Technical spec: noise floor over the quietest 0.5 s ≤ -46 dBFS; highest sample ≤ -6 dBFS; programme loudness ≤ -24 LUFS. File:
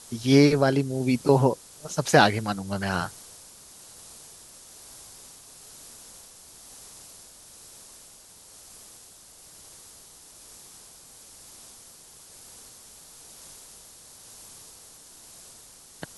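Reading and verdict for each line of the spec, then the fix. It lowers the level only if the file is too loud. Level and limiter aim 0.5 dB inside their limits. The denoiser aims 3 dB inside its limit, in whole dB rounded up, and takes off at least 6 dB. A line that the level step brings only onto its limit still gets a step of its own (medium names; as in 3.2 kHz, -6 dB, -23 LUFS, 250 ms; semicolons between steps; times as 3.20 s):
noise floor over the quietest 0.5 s -50 dBFS: pass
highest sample -2.5 dBFS: fail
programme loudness -22.5 LUFS: fail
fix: trim -2 dB; peak limiter -6.5 dBFS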